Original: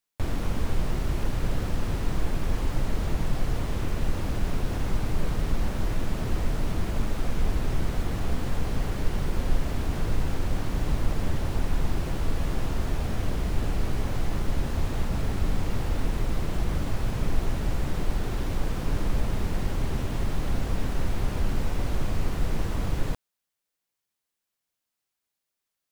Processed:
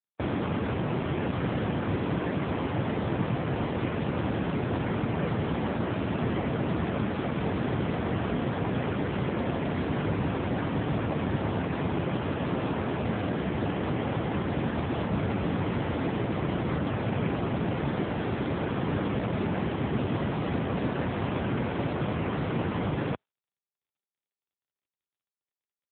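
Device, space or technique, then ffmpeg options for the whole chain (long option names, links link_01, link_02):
mobile call with aggressive noise cancelling: -filter_complex "[0:a]asplit=3[link_01][link_02][link_03];[link_01]afade=type=out:start_time=12.26:duration=0.02[link_04];[link_02]highpass=frequency=45:poles=1,afade=type=in:start_time=12.26:duration=0.02,afade=type=out:start_time=14.14:duration=0.02[link_05];[link_03]afade=type=in:start_time=14.14:duration=0.02[link_06];[link_04][link_05][link_06]amix=inputs=3:normalize=0,highpass=frequency=170:poles=1,afftdn=noise_reduction=20:noise_floor=-48,volume=7.5dB" -ar 8000 -c:a libopencore_amrnb -b:a 7950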